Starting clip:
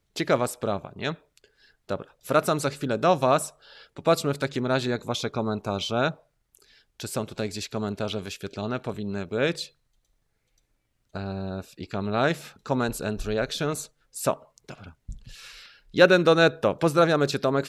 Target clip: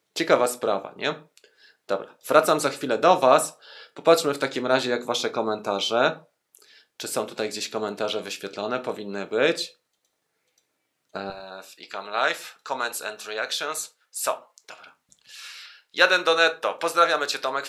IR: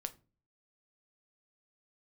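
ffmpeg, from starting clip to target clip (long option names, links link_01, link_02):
-filter_complex "[0:a]asetnsamples=nb_out_samples=441:pad=0,asendcmd='11.3 highpass f 860',highpass=330[link_01];[1:a]atrim=start_sample=2205,atrim=end_sample=6174[link_02];[link_01][link_02]afir=irnorm=-1:irlink=0,volume=6.5dB"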